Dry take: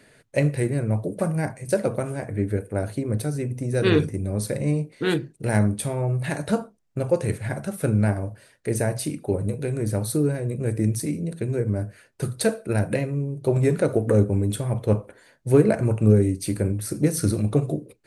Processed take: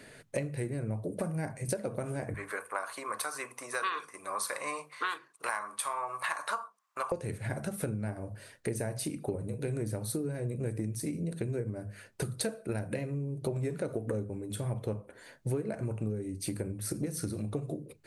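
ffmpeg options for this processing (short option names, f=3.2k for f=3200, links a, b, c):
-filter_complex "[0:a]asettb=1/sr,asplit=3[a][b][c];[a]atrim=end=2.344[d];[b]atrim=start=2.34:end=7.12,asetpts=PTS-STARTPTS,afade=t=in:d=0.004:c=qsin,afade=t=out:st=4.776:d=0.004:c=qsin,highpass=f=1.1k:t=q:w=13[e];[c]atrim=start=7.116[f];[d][e]acrossfade=d=0.004:c1=hsin:c2=qsin[g];[g][f]acrossfade=d=0.004:c1=qsin:c2=hsin,acompressor=threshold=-33dB:ratio=10,bandreject=f=50:t=h:w=6,bandreject=f=100:t=h:w=6,bandreject=f=150:t=h:w=6,bandreject=f=200:t=h:w=6,volume=2.5dB"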